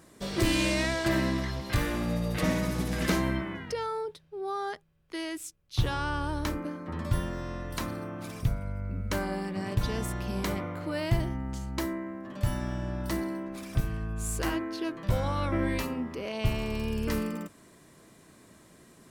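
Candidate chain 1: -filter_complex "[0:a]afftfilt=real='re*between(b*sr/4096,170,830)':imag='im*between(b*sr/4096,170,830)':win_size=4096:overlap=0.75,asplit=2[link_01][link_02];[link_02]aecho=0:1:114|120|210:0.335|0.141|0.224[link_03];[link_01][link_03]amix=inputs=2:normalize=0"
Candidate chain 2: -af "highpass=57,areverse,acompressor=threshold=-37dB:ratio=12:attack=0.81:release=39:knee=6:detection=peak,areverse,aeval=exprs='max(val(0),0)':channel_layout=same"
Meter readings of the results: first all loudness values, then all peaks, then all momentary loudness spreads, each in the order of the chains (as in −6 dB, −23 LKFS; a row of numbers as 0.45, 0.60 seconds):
−34.5, −46.5 LKFS; −15.5, −30.5 dBFS; 10, 5 LU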